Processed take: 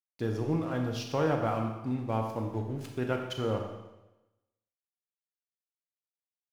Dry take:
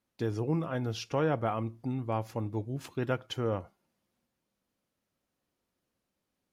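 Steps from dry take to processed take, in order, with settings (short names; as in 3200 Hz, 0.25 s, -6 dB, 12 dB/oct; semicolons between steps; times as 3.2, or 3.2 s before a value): crossover distortion -52 dBFS; Schroeder reverb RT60 1 s, combs from 28 ms, DRR 3 dB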